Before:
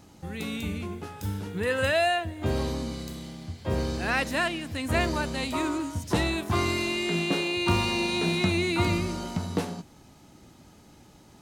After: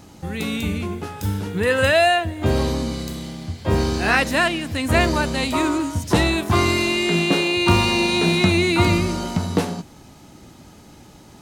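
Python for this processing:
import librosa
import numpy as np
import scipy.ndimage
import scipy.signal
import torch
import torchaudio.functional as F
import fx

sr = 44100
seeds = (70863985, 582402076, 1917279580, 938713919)

y = fx.doubler(x, sr, ms=20.0, db=-4, at=(3.66, 4.17))
y = y * librosa.db_to_amplitude(8.0)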